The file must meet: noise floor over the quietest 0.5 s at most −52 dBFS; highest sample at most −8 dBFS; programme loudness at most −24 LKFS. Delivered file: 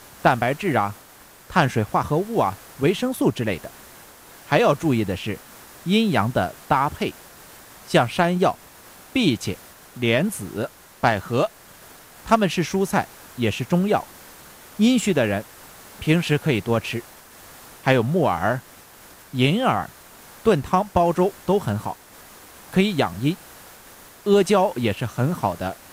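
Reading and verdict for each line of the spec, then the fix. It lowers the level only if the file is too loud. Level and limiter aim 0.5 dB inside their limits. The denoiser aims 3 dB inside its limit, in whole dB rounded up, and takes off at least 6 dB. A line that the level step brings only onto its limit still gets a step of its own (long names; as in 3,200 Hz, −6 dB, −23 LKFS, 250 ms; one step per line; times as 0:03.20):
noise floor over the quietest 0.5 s −48 dBFS: out of spec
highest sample −4.5 dBFS: out of spec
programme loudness −22.0 LKFS: out of spec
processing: broadband denoise 6 dB, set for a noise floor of −48 dBFS
level −2.5 dB
brickwall limiter −8.5 dBFS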